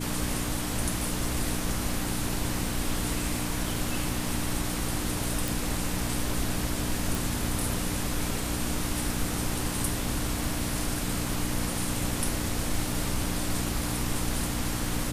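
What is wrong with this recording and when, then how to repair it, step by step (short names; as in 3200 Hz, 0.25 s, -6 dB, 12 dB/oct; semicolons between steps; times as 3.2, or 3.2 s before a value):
hum 60 Hz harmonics 5 -34 dBFS
5.48 pop
7.15 pop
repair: de-click; de-hum 60 Hz, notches 5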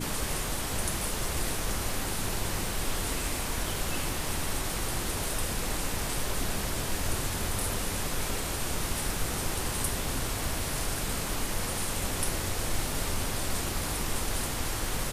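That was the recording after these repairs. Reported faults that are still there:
none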